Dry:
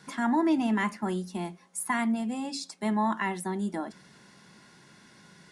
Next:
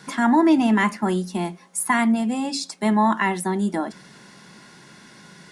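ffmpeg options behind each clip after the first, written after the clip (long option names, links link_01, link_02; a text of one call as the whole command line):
ffmpeg -i in.wav -af "equalizer=frequency=83:width_type=o:width=0.57:gain=-8.5,volume=8.5dB" out.wav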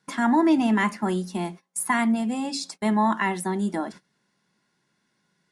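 ffmpeg -i in.wav -af "agate=range=-22dB:threshold=-37dB:ratio=16:detection=peak,volume=-3dB" out.wav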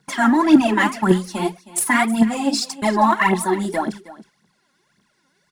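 ffmpeg -i in.wav -af "aphaser=in_gain=1:out_gain=1:delay=3.9:decay=0.75:speed=1.8:type=triangular,aecho=1:1:316:0.133,volume=4dB" out.wav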